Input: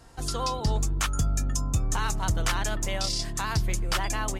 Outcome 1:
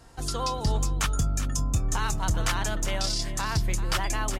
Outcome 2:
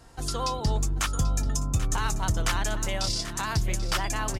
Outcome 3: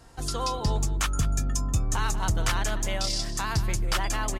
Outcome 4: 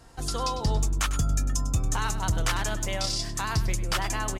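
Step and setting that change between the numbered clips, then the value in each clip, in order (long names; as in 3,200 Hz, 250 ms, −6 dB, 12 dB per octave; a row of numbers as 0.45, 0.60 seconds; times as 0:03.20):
single-tap delay, delay time: 389, 787, 190, 100 milliseconds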